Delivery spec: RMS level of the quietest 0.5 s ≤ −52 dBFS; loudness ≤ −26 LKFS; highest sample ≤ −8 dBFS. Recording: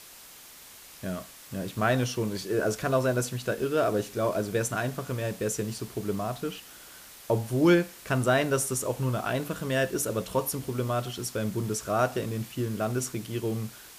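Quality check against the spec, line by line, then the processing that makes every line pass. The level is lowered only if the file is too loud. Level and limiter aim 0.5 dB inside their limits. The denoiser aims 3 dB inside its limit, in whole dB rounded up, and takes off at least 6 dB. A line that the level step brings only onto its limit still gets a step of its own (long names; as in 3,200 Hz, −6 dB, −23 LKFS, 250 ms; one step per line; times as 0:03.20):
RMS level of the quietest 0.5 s −49 dBFS: out of spec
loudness −29.0 LKFS: in spec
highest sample −10.5 dBFS: in spec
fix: broadband denoise 6 dB, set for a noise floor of −49 dBFS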